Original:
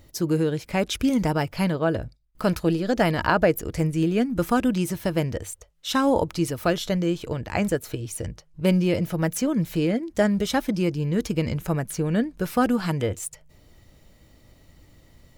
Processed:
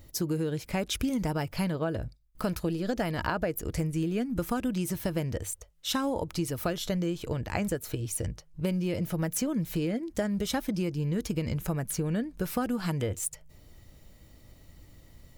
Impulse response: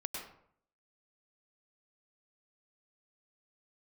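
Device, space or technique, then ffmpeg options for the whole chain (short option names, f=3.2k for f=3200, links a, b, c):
ASMR close-microphone chain: -af "lowshelf=f=140:g=4.5,acompressor=threshold=-23dB:ratio=6,highshelf=f=8k:g=6.5,volume=-3dB"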